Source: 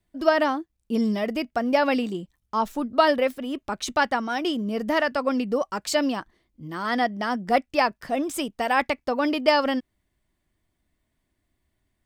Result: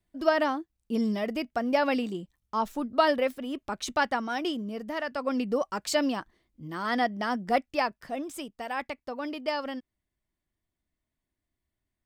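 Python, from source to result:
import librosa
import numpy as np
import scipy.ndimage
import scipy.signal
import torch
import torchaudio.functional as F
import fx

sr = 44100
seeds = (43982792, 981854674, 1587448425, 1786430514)

y = fx.gain(x, sr, db=fx.line((4.44, -4.0), (4.93, -11.0), (5.42, -3.0), (7.36, -3.0), (8.59, -11.0)))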